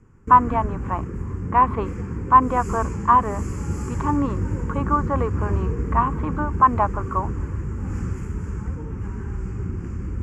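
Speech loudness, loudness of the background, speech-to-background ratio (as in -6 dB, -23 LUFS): -21.5 LUFS, -28.5 LUFS, 7.0 dB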